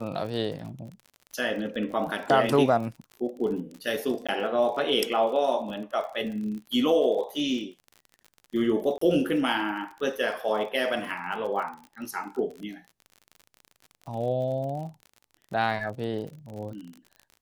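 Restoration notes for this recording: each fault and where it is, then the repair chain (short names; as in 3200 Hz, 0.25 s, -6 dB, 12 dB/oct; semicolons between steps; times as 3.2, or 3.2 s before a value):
crackle 49/s -36 dBFS
4.27–4.29 gap 16 ms
8.98–9.01 gap 34 ms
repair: de-click; interpolate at 4.27, 16 ms; interpolate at 8.98, 34 ms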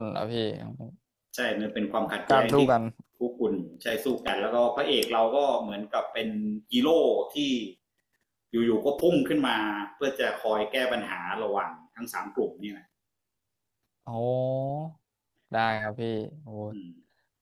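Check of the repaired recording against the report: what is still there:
none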